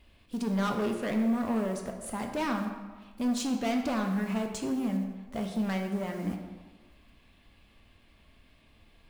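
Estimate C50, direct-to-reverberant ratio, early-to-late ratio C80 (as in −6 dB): 6.0 dB, 3.0 dB, 7.5 dB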